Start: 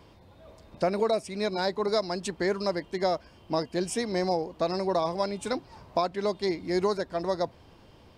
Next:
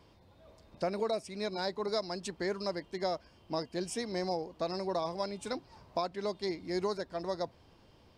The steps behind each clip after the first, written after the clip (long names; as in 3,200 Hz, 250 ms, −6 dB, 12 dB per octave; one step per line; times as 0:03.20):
parametric band 5,000 Hz +3 dB 0.77 octaves
level −7 dB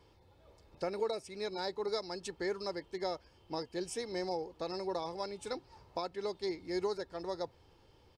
comb filter 2.3 ms, depth 46%
level −3.5 dB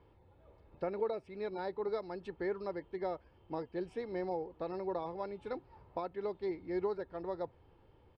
high-frequency loss of the air 480 metres
level +1 dB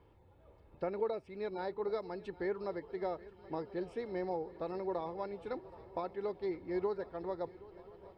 feedback echo with a long and a short gap by turns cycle 1,032 ms, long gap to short 3 to 1, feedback 59%, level −19.5 dB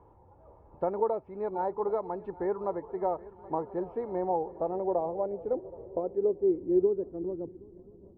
low-pass filter sweep 940 Hz → 270 Hz, 0:04.08–0:07.75
level +4 dB